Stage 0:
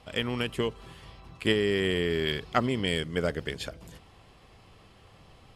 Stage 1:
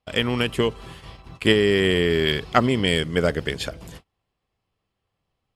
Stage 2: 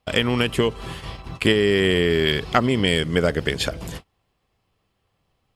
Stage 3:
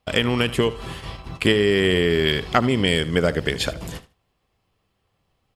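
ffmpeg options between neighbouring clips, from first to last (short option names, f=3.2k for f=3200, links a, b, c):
-af "agate=range=-31dB:threshold=-48dB:ratio=16:detection=peak,volume=7.5dB"
-af "acompressor=threshold=-28dB:ratio=2,volume=7.5dB"
-af "aecho=1:1:76|152:0.141|0.0268"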